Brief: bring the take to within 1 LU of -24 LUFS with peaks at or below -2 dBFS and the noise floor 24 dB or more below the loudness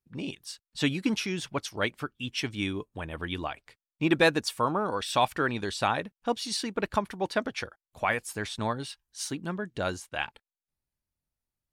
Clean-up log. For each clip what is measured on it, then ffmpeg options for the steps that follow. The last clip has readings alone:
loudness -30.5 LUFS; peak -11.5 dBFS; loudness target -24.0 LUFS
-> -af "volume=6.5dB"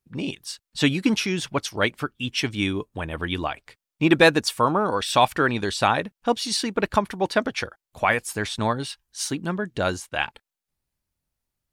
loudness -24.0 LUFS; peak -5.0 dBFS; noise floor -88 dBFS

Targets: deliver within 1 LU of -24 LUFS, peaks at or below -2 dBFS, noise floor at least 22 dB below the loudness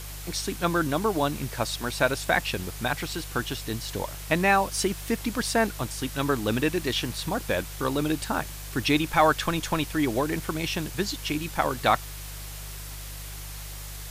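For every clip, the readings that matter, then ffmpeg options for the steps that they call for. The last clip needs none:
hum 50 Hz; harmonics up to 150 Hz; hum level -37 dBFS; noise floor -38 dBFS; noise floor target -49 dBFS; loudness -27.0 LUFS; peak -8.0 dBFS; loudness target -24.0 LUFS
-> -af "bandreject=f=50:t=h:w=4,bandreject=f=100:t=h:w=4,bandreject=f=150:t=h:w=4"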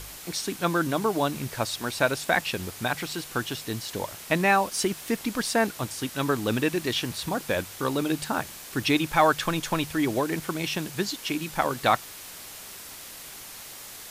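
hum none; noise floor -43 dBFS; noise floor target -49 dBFS
-> -af "afftdn=nr=6:nf=-43"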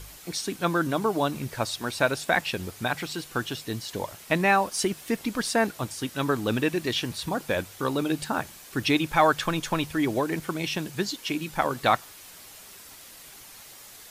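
noise floor -47 dBFS; noise floor target -49 dBFS
-> -af "afftdn=nr=6:nf=-47"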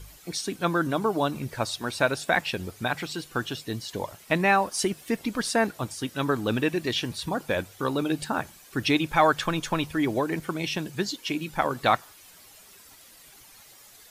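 noise floor -52 dBFS; loudness -27.0 LUFS; peak -8.5 dBFS; loudness target -24.0 LUFS
-> -af "volume=3dB"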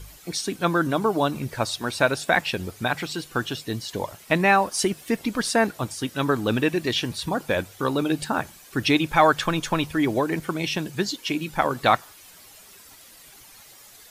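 loudness -24.0 LUFS; peak -5.5 dBFS; noise floor -49 dBFS

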